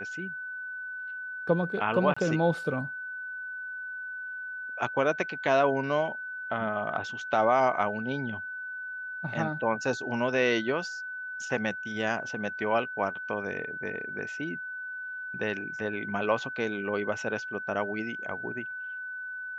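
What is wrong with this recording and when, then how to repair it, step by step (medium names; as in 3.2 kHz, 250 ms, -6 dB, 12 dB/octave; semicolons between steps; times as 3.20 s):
whine 1.5 kHz -35 dBFS
2.14–2.17 s: dropout 25 ms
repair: band-stop 1.5 kHz, Q 30; interpolate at 2.14 s, 25 ms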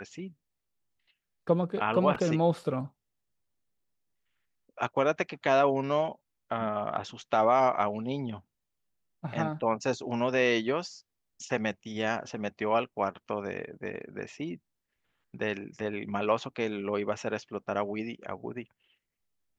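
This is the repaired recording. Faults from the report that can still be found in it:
nothing left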